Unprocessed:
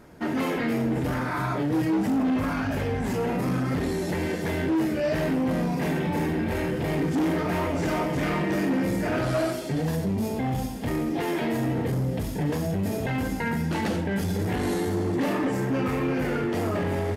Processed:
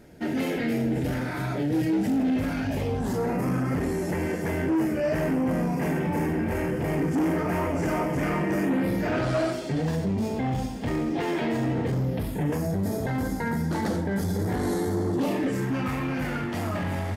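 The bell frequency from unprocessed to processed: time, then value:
bell -13.5 dB 0.53 oct
2.61 s 1100 Hz
3.42 s 3800 Hz
8.61 s 3800 Hz
9.17 s 12000 Hz
11.91 s 12000 Hz
12.76 s 2700 Hz
15.1 s 2700 Hz
15.79 s 420 Hz

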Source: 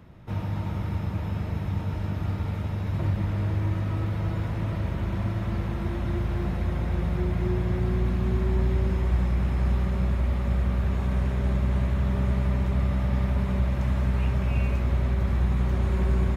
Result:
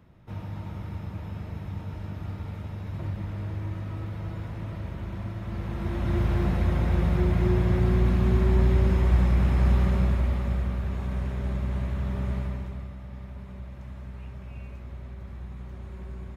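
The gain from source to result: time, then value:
5.41 s -6.5 dB
6.22 s +3 dB
9.9 s +3 dB
10.81 s -4.5 dB
12.37 s -4.5 dB
12.96 s -15.5 dB

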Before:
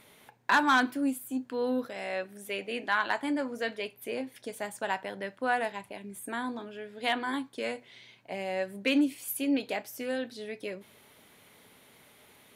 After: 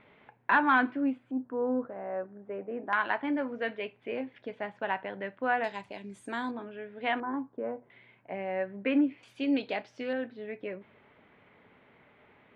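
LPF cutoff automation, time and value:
LPF 24 dB/oct
2600 Hz
from 1.31 s 1300 Hz
from 2.93 s 2800 Hz
from 5.64 s 6600 Hz
from 6.51 s 2600 Hz
from 7.2 s 1200 Hz
from 7.9 s 2200 Hz
from 9.23 s 4100 Hz
from 10.13 s 2400 Hz

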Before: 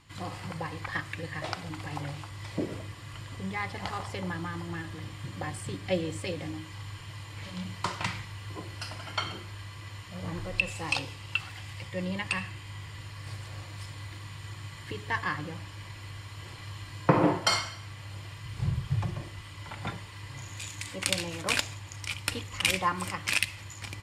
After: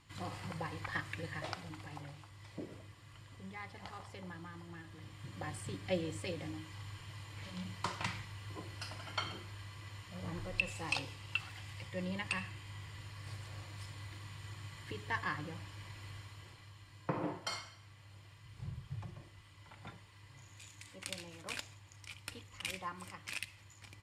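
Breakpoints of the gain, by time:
1.3 s -5.5 dB
2.16 s -13.5 dB
4.85 s -13.5 dB
5.52 s -6.5 dB
16.16 s -6.5 dB
16.73 s -15 dB

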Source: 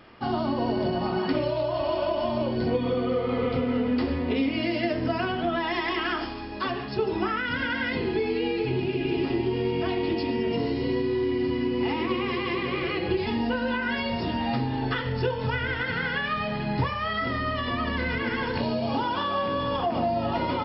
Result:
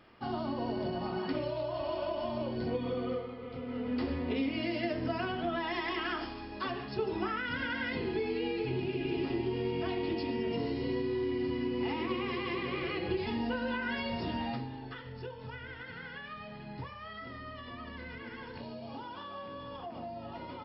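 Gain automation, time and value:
3.14 s -8.5 dB
3.37 s -19 dB
4.03 s -7 dB
14.41 s -7 dB
14.83 s -16.5 dB

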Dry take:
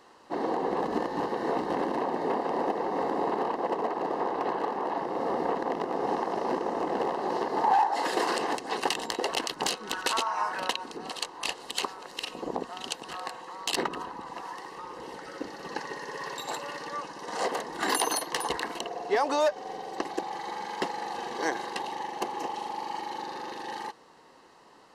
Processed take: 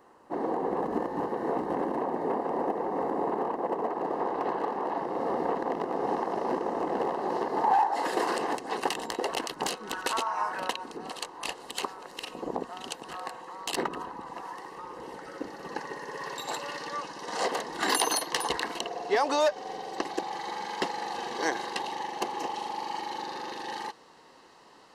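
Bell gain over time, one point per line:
bell 4200 Hz 1.9 oct
3.68 s -12.5 dB
4.42 s -5 dB
16.04 s -5 dB
16.64 s +3 dB

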